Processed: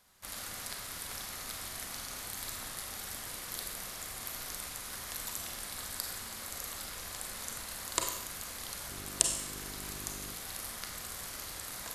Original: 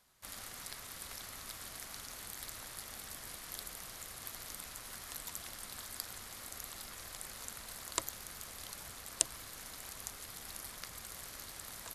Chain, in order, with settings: Schroeder reverb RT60 0.8 s, combs from 31 ms, DRR 2.5 dB; 8.90–10.33 s: mains buzz 50 Hz, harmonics 8, -52 dBFS -2 dB/octave; trim +3.5 dB

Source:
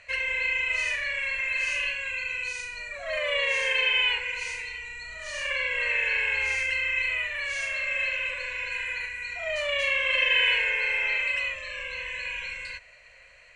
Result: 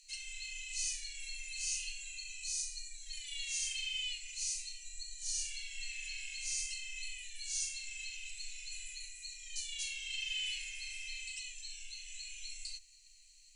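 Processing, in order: inverse Chebyshev band-stop 110–1000 Hz, stop band 80 dB; trim +8 dB

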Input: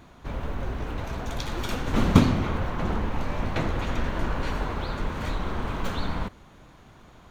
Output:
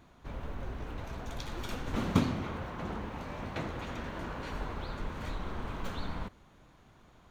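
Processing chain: 1.95–4.53 s: high-pass 90 Hz 6 dB/octave; trim -8.5 dB

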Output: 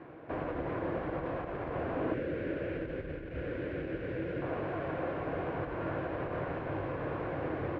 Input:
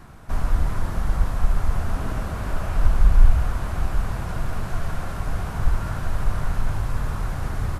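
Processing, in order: 2.14–4.42 s: high-order bell 900 Hz -14.5 dB 1.1 oct; peak limiter -13.5 dBFS, peak gain reduction 10.5 dB; cabinet simulation 210–2400 Hz, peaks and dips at 210 Hz -10 dB, 320 Hz +10 dB, 510 Hz +9 dB, 880 Hz -5 dB, 1.3 kHz -9 dB, 1.9 kHz -3 dB

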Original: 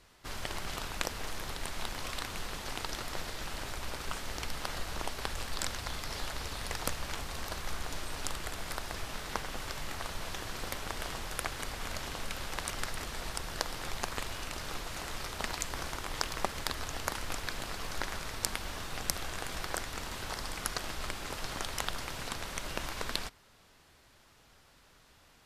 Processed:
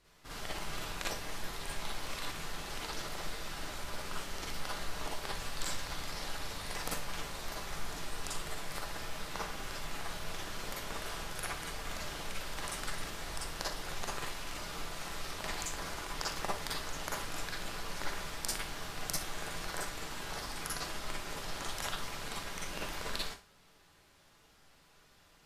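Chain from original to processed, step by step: Schroeder reverb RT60 0.3 s, DRR -5 dB; trim -8 dB

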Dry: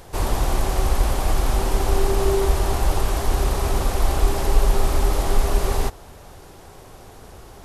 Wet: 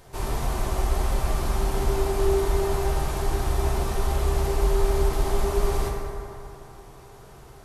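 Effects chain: band-stop 500 Hz, Q 12; reverberation RT60 3.0 s, pre-delay 4 ms, DRR -1.5 dB; trim -8 dB

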